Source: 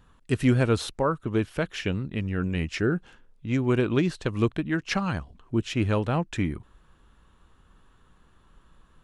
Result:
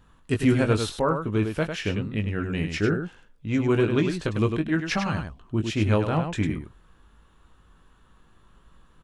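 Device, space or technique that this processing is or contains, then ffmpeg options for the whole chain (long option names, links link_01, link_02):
slapback doubling: -filter_complex "[0:a]asplit=3[link_01][link_02][link_03];[link_02]adelay=19,volume=-6.5dB[link_04];[link_03]adelay=101,volume=-6.5dB[link_05];[link_01][link_04][link_05]amix=inputs=3:normalize=0"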